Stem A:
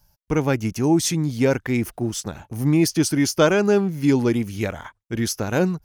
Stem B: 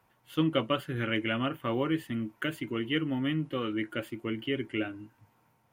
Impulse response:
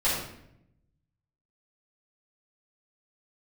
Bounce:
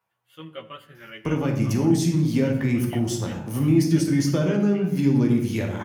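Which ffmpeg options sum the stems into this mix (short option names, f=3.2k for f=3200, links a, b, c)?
-filter_complex "[0:a]acrossover=split=270[a][b];[b]acompressor=threshold=-31dB:ratio=6[c];[a][c]amix=inputs=2:normalize=0,adelay=950,volume=-1.5dB,asplit=2[d][e];[e]volume=-10dB[f];[1:a]equalizer=f=280:t=o:w=0.77:g=-12.5,asplit=2[g][h];[h]adelay=11.9,afreqshift=-0.81[i];[g][i]amix=inputs=2:normalize=1,volume=-6dB,asplit=2[j][k];[k]volume=-23dB[l];[2:a]atrim=start_sample=2205[m];[f][l]amix=inputs=2:normalize=0[n];[n][m]afir=irnorm=-1:irlink=0[o];[d][j][o]amix=inputs=3:normalize=0,highpass=110"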